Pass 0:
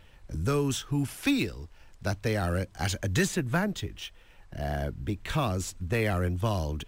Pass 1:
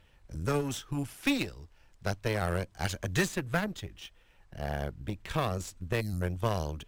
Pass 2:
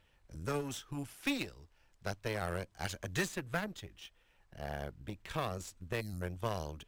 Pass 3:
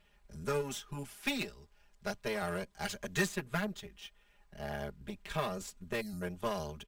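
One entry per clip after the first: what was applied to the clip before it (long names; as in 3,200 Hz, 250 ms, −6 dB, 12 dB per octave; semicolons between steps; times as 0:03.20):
gain on a spectral selection 0:06.01–0:06.22, 250–3,900 Hz −27 dB; harmonic generator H 3 −15 dB, 4 −19 dB, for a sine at −15.5 dBFS
low-shelf EQ 270 Hz −4 dB; level −5 dB
comb filter 4.9 ms, depth 97%; level −1 dB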